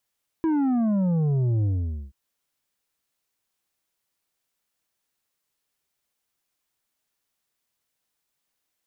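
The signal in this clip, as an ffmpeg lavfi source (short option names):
-f lavfi -i "aevalsrc='0.0944*clip((1.68-t)/0.48,0,1)*tanh(2.24*sin(2*PI*330*1.68/log(65/330)*(exp(log(65/330)*t/1.68)-1)))/tanh(2.24)':d=1.68:s=44100"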